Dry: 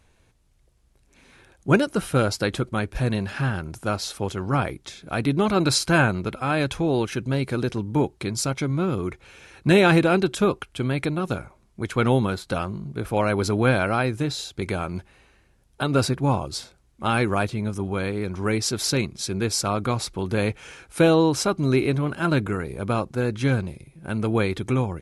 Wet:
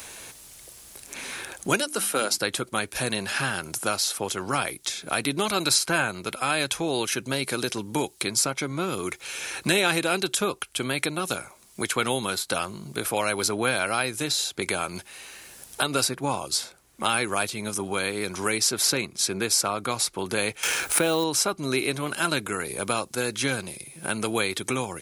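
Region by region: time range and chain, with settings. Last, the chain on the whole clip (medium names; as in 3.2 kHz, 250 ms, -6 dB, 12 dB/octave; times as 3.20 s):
1.80–2.38 s: high-pass 200 Hz 24 dB/octave + hum notches 50/100/150/200/250/300/350 Hz
20.63–21.24 s: companding laws mixed up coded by A + level flattener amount 50%
whole clip: RIAA curve recording; three bands compressed up and down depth 70%; trim -1.5 dB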